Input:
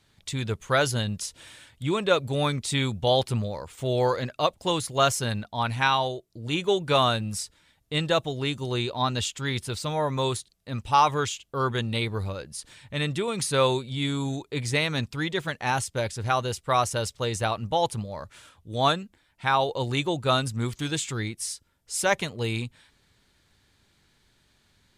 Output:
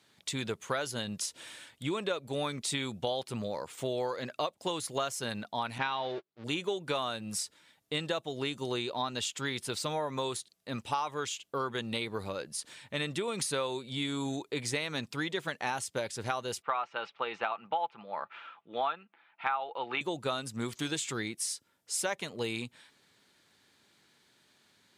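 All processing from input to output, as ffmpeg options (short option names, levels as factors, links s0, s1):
-filter_complex "[0:a]asettb=1/sr,asplit=3[s0][s1][s2];[s0]atrim=end=5.784[s3];[s1]atrim=start=5.78:end=6.44,asetpts=PTS-STARTPTS,afade=t=in:d=0.004:c=qsin,afade=t=out:st=0.656:d=0.004:c=qsin,aeval=exprs='val(0)+0.5*0.0224*sgn(val(0))':c=same,agate=range=0.00316:threshold=0.0224:ratio=16:release=100:detection=peak,lowpass=f=4400:w=0.5412,lowpass=f=4400:w=1.3066[s4];[s2]atrim=start=6.436[s5];[s3][s4]acrossfade=d=0.004:c1=hsin:c2=qsin[s6];[s6][s5]acrossfade=d=0.004:c1=qsin:c2=hsin,asettb=1/sr,asplit=3[s7][s8][s9];[s7]atrim=end=16.624[s10];[s8]atrim=start=16.62:end=20.01,asetpts=PTS-STARTPTS,afade=t=in:d=0.004:c=qsin,afade=t=out:st=3.386:d=0.004:c=qsin,highpass=320,equalizer=f=330:t=q:w=4:g=-6,equalizer=f=530:t=q:w=4:g=-5,equalizer=f=830:t=q:w=4:g=7,equalizer=f=1300:t=q:w=4:g=9,equalizer=f=2500:t=q:w=4:g=6,lowpass=f=3100:w=0.5412,lowpass=f=3100:w=1.3066,aecho=1:1:5.9:0.3,atrim=end_sample=149499[s11];[s9]atrim=start=20.006[s12];[s10][s11]acrossfade=d=0.004:c1=hsin:c2=qsin[s13];[s13][s12]acrossfade=d=0.004:c1=qsin:c2=hsin,highpass=210,acompressor=threshold=0.0316:ratio=6"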